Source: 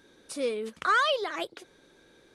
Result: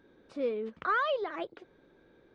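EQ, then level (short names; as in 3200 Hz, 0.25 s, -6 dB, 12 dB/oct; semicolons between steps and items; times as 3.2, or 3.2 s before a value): tape spacing loss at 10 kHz 37 dB; 0.0 dB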